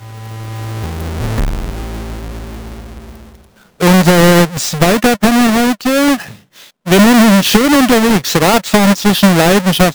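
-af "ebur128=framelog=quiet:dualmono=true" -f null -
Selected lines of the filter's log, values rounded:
Integrated loudness:
  I:          -7.2 LUFS
  Threshold: -18.9 LUFS
Loudness range:
  LRA:        14.1 LU
  Threshold: -28.8 LUFS
  LRA low:   -20.4 LUFS
  LRA high:   -6.3 LUFS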